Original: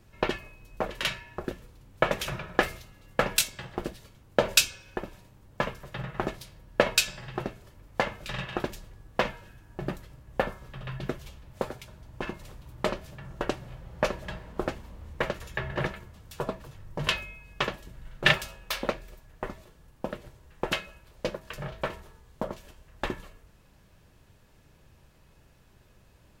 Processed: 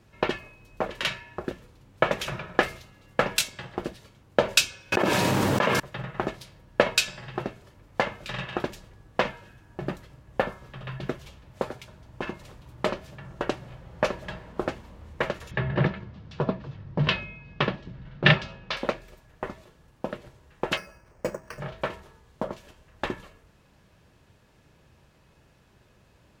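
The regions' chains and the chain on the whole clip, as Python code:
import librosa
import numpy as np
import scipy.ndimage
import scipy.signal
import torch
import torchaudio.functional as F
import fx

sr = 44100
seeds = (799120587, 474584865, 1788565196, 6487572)

y = fx.chain(x, sr, fx.highpass(hz=180.0, slope=12),
    fx.env_flatten(amount_pct=100), at=(4.92, 5.8))
y = fx.chain(y, sr, fx.lowpass(hz=4900.0, slope=24),
    fx.peak_eq(hz=160.0, db=10.0, octaves=1.9), at=(15.51, 18.77))
y = fx.chain(y, sr, fx.lowpass(hz=2400.0, slope=24),
    fx.resample_bad(factor=6, down='none', up='hold'), at=(20.77, 21.6))
y = fx.highpass(y, sr, hz=84.0, slope=6)
y = fx.high_shelf(y, sr, hz=9800.0, db=-10.5)
y = y * 10.0 ** (2.0 / 20.0)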